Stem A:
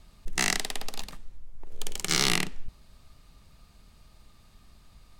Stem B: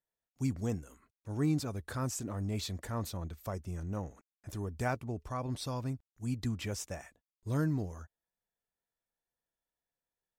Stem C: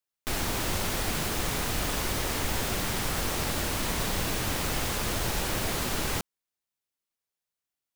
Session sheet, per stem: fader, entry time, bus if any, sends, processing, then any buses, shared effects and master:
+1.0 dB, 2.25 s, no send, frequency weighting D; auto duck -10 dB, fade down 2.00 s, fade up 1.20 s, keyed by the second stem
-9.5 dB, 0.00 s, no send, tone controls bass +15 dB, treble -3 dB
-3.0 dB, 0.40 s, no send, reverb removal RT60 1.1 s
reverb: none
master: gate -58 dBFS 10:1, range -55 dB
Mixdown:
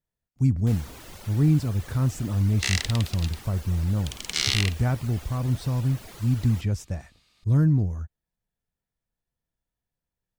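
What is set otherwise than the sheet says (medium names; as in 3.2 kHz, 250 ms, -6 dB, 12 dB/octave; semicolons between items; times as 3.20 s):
stem B -9.5 dB -> +0.5 dB; stem C -3.0 dB -> -12.0 dB; master: missing gate -58 dBFS 10:1, range -55 dB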